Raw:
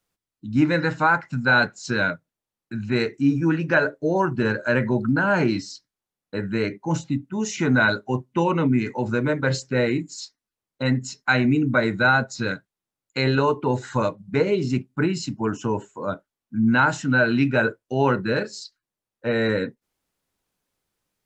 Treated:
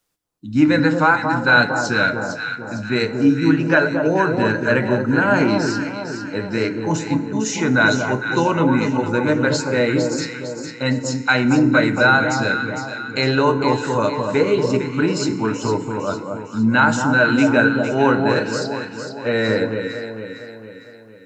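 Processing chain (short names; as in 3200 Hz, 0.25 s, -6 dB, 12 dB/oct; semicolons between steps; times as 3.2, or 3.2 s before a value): tone controls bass -3 dB, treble +3 dB; echo with dull and thin repeats by turns 0.228 s, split 1200 Hz, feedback 68%, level -4.5 dB; FDN reverb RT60 1.4 s, low-frequency decay 0.95×, high-frequency decay 0.65×, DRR 12 dB; gain +3.5 dB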